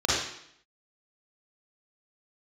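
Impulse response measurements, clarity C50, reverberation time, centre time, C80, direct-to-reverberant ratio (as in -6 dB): -3.0 dB, 0.70 s, 76 ms, 2.0 dB, -8.0 dB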